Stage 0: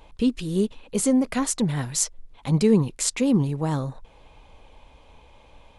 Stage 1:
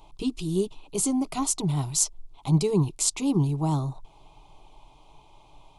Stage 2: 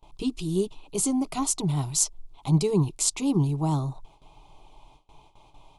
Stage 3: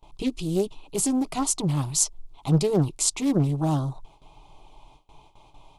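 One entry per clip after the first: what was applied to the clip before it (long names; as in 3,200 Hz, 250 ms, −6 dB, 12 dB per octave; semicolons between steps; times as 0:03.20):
phaser with its sweep stopped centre 340 Hz, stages 8; level +1 dB
noise gate with hold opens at −43 dBFS
highs frequency-modulated by the lows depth 0.7 ms; level +1.5 dB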